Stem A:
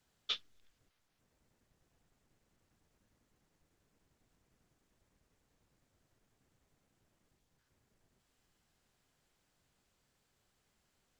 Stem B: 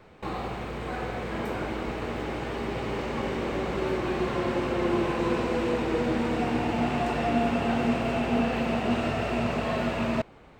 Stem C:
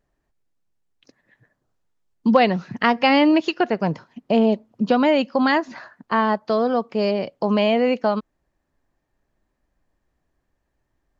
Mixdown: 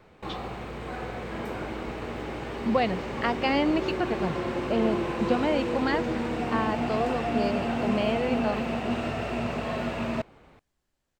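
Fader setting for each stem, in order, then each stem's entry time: −5.5, −2.5, −9.0 decibels; 0.00, 0.00, 0.40 seconds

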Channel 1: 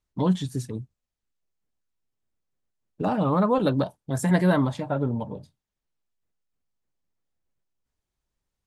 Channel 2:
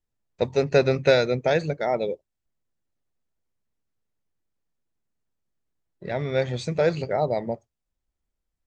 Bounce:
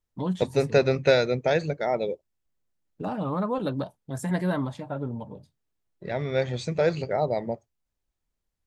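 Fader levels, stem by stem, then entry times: −6.0, −1.5 decibels; 0.00, 0.00 seconds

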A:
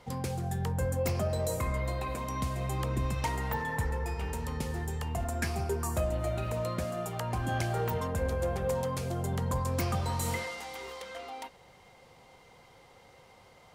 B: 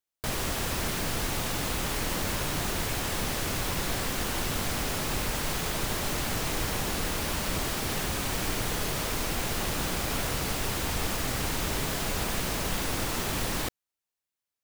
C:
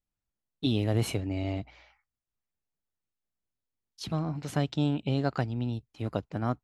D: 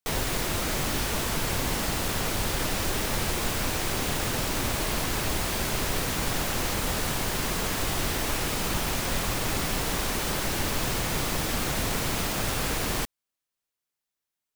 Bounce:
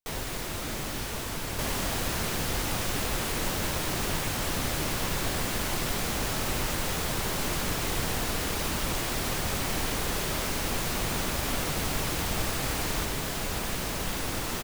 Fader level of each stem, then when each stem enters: muted, −1.5 dB, −17.0 dB, −6.0 dB; muted, 1.35 s, 0.00 s, 0.00 s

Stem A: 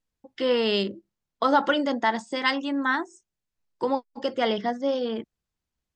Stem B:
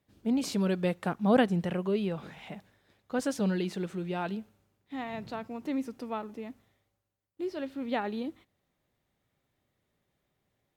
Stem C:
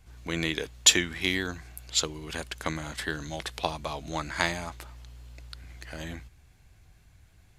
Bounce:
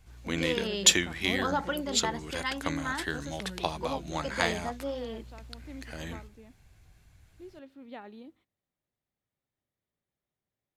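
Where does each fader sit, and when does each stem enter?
−9.5, −13.0, −1.5 decibels; 0.00, 0.00, 0.00 seconds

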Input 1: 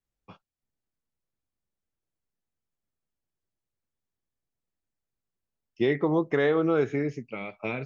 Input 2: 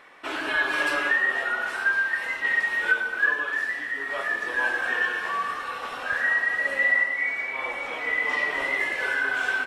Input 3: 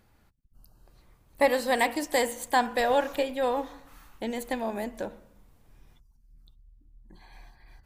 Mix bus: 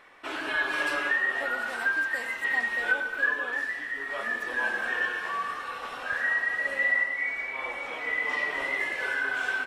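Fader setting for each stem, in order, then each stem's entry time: muted, −3.5 dB, −16.5 dB; muted, 0.00 s, 0.00 s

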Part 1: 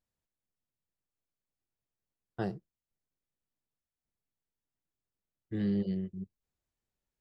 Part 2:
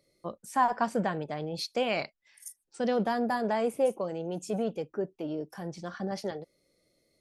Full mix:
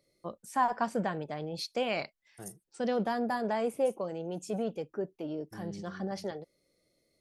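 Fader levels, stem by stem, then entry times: −13.0, −2.5 decibels; 0.00, 0.00 seconds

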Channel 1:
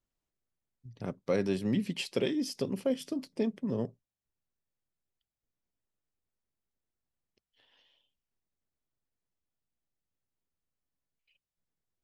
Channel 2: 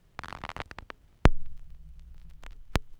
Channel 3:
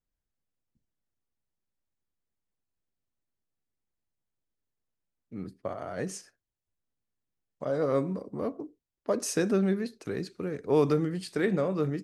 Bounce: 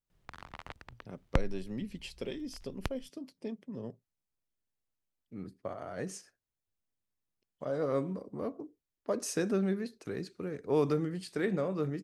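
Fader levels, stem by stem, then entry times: −9.0, −8.5, −4.5 decibels; 0.05, 0.10, 0.00 seconds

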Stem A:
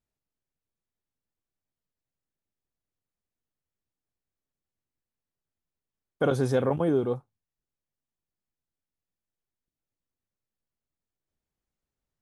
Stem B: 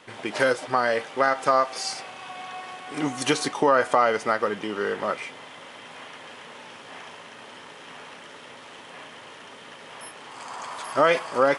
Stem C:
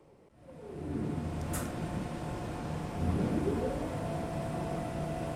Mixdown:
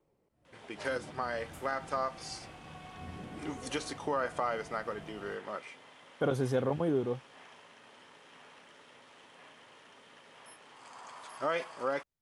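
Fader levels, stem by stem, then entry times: −5.5, −13.0, −15.0 decibels; 0.00, 0.45, 0.00 seconds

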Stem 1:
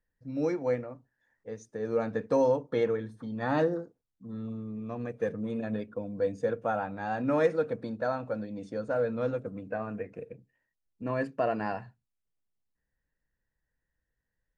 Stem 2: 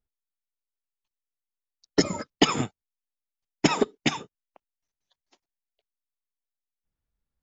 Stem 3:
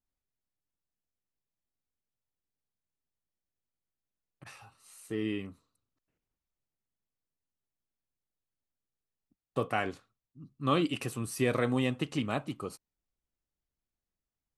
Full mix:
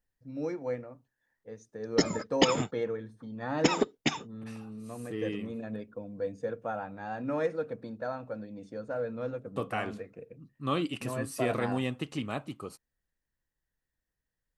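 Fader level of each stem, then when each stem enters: −5.0, −4.0, −2.5 decibels; 0.00, 0.00, 0.00 seconds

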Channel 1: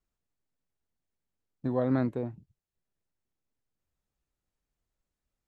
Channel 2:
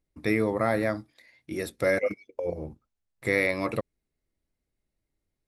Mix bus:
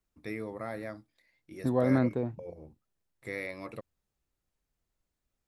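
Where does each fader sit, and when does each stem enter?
+1.5, −13.0 decibels; 0.00, 0.00 seconds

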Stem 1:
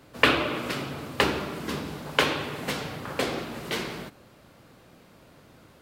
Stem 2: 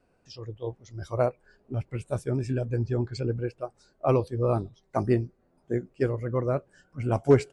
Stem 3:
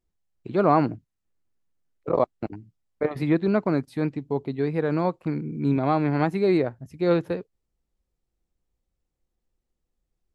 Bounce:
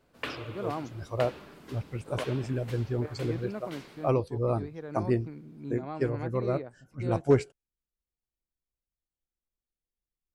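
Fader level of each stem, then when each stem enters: −16.5, −3.0, −16.0 decibels; 0.00, 0.00, 0.00 seconds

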